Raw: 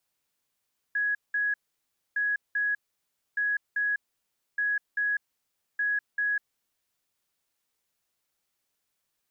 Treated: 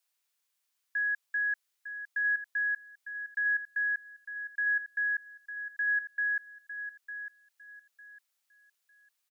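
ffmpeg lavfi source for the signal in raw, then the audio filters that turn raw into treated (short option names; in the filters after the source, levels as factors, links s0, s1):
-f lavfi -i "aevalsrc='0.0631*sin(2*PI*1670*t)*clip(min(mod(mod(t,1.21),0.39),0.2-mod(mod(t,1.21),0.39))/0.005,0,1)*lt(mod(t,1.21),0.78)':d=6.05:s=44100"
-filter_complex "[0:a]highpass=f=1400:p=1,asplit=2[s0][s1];[s1]aecho=0:1:903|1806|2709:0.299|0.0776|0.0202[s2];[s0][s2]amix=inputs=2:normalize=0"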